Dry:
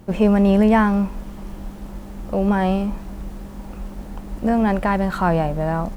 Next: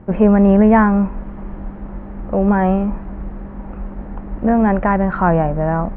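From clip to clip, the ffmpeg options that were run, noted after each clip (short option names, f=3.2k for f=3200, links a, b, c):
-af "lowpass=f=2k:w=0.5412,lowpass=f=2k:w=1.3066,volume=4dB"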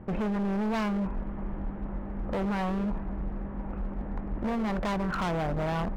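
-af "acompressor=threshold=-14dB:ratio=4,asoftclip=type=hard:threshold=-22dB,volume=-5dB"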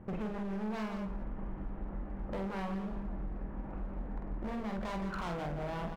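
-filter_complex "[0:a]asplit=2[a][b];[b]aecho=0:1:46.65|169.1:0.631|0.398[c];[a][c]amix=inputs=2:normalize=0,acompressor=threshold=-28dB:ratio=6,volume=-6dB"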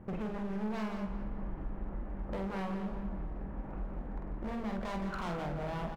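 -filter_complex "[0:a]asplit=2[a][b];[b]adelay=208,lowpass=f=3.2k:p=1,volume=-11dB,asplit=2[c][d];[d]adelay=208,lowpass=f=3.2k:p=1,volume=0.53,asplit=2[e][f];[f]adelay=208,lowpass=f=3.2k:p=1,volume=0.53,asplit=2[g][h];[h]adelay=208,lowpass=f=3.2k:p=1,volume=0.53,asplit=2[i][j];[j]adelay=208,lowpass=f=3.2k:p=1,volume=0.53,asplit=2[k][l];[l]adelay=208,lowpass=f=3.2k:p=1,volume=0.53[m];[a][c][e][g][i][k][m]amix=inputs=7:normalize=0"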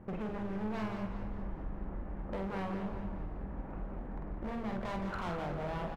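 -filter_complex "[0:a]bass=f=250:g=-2,treble=f=4k:g=-4,asplit=7[a][b][c][d][e][f][g];[b]adelay=199,afreqshift=-100,volume=-11.5dB[h];[c]adelay=398,afreqshift=-200,volume=-17.2dB[i];[d]adelay=597,afreqshift=-300,volume=-22.9dB[j];[e]adelay=796,afreqshift=-400,volume=-28.5dB[k];[f]adelay=995,afreqshift=-500,volume=-34.2dB[l];[g]adelay=1194,afreqshift=-600,volume=-39.9dB[m];[a][h][i][j][k][l][m]amix=inputs=7:normalize=0"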